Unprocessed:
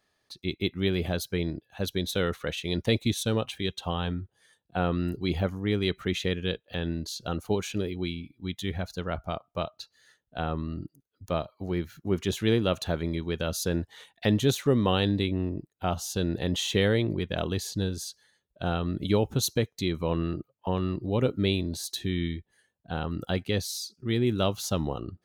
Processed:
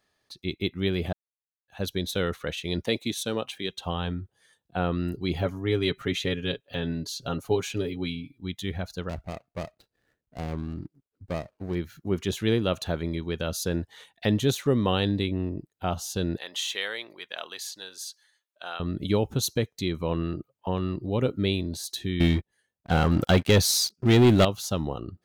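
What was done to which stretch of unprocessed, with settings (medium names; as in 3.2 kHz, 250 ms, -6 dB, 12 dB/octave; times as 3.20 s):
1.13–1.68 s: mute
2.84–3.72 s: Bessel high-pass 240 Hz
5.35–8.38 s: comb 7.3 ms
9.09–11.75 s: median filter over 41 samples
16.37–18.80 s: high-pass 1 kHz
22.20–24.45 s: waveshaping leveller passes 3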